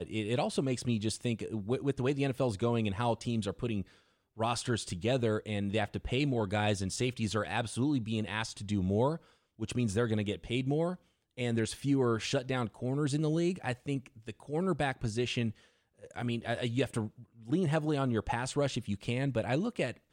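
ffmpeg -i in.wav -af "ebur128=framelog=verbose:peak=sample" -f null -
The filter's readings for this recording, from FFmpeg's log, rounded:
Integrated loudness:
  I:         -33.0 LUFS
  Threshold: -43.2 LUFS
Loudness range:
  LRA:         2.1 LU
  Threshold: -53.3 LUFS
  LRA low:   -34.6 LUFS
  LRA high:  -32.5 LUFS
Sample peak:
  Peak:      -16.8 dBFS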